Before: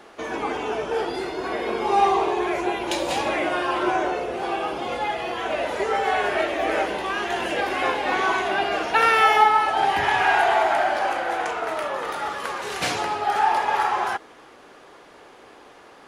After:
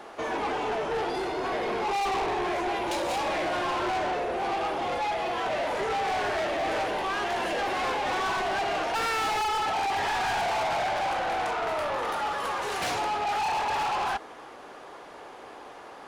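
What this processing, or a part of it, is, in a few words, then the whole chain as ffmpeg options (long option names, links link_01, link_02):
saturation between pre-emphasis and de-emphasis: -af "equalizer=frequency=810:width=1.1:gain=5.5,highshelf=frequency=9400:gain=6.5,asoftclip=type=tanh:threshold=-26dB,highshelf=frequency=9400:gain=-6.5"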